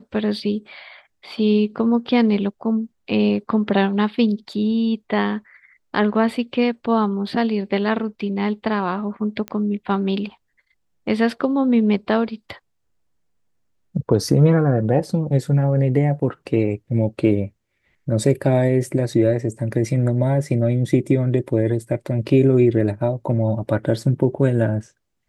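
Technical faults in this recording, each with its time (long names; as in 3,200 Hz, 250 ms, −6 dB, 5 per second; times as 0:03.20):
0:09.48: click −15 dBFS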